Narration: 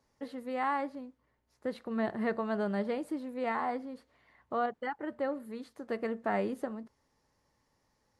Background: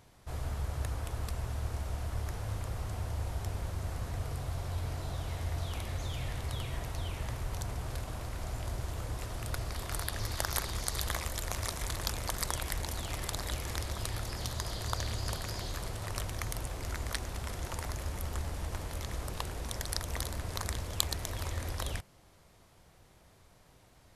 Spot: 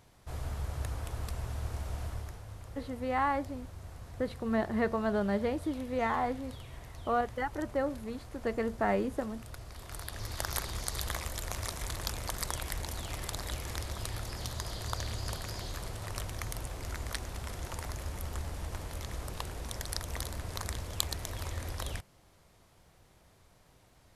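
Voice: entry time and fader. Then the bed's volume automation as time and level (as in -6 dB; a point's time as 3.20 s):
2.55 s, +2.0 dB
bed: 2.06 s -1 dB
2.45 s -9.5 dB
9.68 s -9.5 dB
10.48 s -1.5 dB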